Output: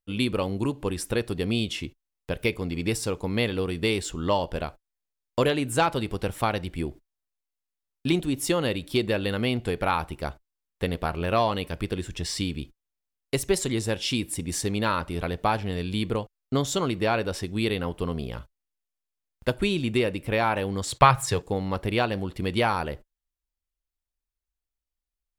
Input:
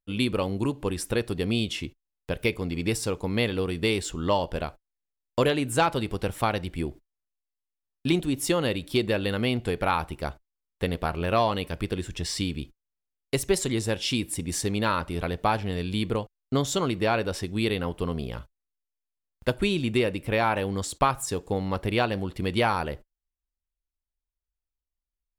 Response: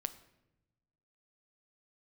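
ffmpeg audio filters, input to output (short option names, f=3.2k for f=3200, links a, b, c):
-filter_complex "[0:a]asettb=1/sr,asplit=3[a][b][c];[a]atrim=end=20.874[d];[b]atrim=start=20.87:end=21.42,asetpts=PTS-STARTPTS,afade=t=in:d=0.004:c=qsin,afade=t=out:st=0.546:d=0.004:c=qsin,equalizer=f=125:t=o:w=1:g=12,equalizer=f=250:t=o:w=1:g=-7,equalizer=f=500:t=o:w=1:g=4,equalizer=f=1k:t=o:w=1:g=4,equalizer=f=2k:t=o:w=1:g=8,equalizer=f=4k:t=o:w=1:g=5[e];[c]atrim=start=21.416[f];[d][e]acrossfade=d=0.004:c1=hsin:c2=qsin[g];[g][f]acrossfade=d=0.004:c1=qsin:c2=hsin"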